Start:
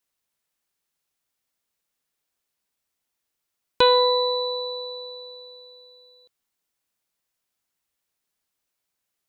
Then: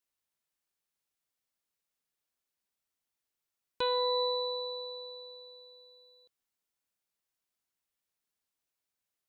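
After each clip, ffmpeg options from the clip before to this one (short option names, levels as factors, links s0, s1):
-af "alimiter=limit=0.168:level=0:latency=1,volume=0.422"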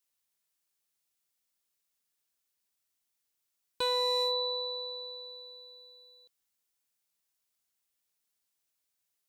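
-af "highshelf=f=3000:g=8,asoftclip=type=hard:threshold=0.0708,volume=0.891"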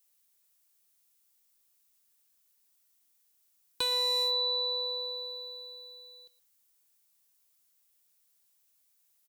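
-filter_complex "[0:a]acrossover=split=500|1900[s0][s1][s2];[s0]acompressor=threshold=0.00316:ratio=4[s3];[s1]acompressor=threshold=0.00562:ratio=4[s4];[s2]acompressor=threshold=0.02:ratio=4[s5];[s3][s4][s5]amix=inputs=3:normalize=0,crystalizer=i=1:c=0,aecho=1:1:117:0.119,volume=1.5"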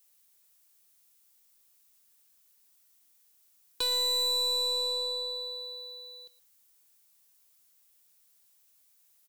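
-af "aeval=exprs='(tanh(35.5*val(0)+0.2)-tanh(0.2))/35.5':c=same,volume=1.88"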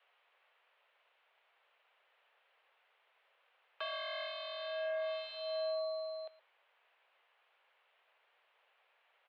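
-af "aeval=exprs='0.0141*(abs(mod(val(0)/0.0141+3,4)-2)-1)':c=same,highshelf=f=2000:g=-8.5,highpass=f=350:t=q:w=0.5412,highpass=f=350:t=q:w=1.307,lowpass=f=2900:t=q:w=0.5176,lowpass=f=2900:t=q:w=0.7071,lowpass=f=2900:t=q:w=1.932,afreqshift=140,volume=5.96"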